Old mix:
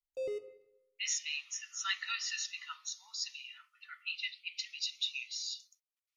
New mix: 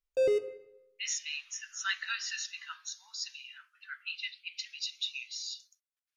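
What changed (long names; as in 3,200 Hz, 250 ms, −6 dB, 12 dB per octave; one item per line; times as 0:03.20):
background +11.0 dB
master: remove Butterworth band-reject 1,600 Hz, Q 5.1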